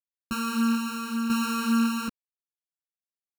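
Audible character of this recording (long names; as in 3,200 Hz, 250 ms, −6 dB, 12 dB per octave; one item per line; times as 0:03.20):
a buzz of ramps at a fixed pitch in blocks of 32 samples
tremolo saw down 0.77 Hz, depth 65%
a quantiser's noise floor 10 bits, dither none
a shimmering, thickened sound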